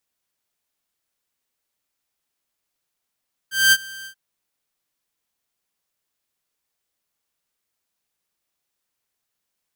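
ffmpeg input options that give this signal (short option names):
-f lavfi -i "aevalsrc='0.422*(2*mod(1570*t,1)-1)':d=0.634:s=44100,afade=t=in:d=0.212,afade=t=out:st=0.212:d=0.046:silence=0.0668,afade=t=out:st=0.55:d=0.084"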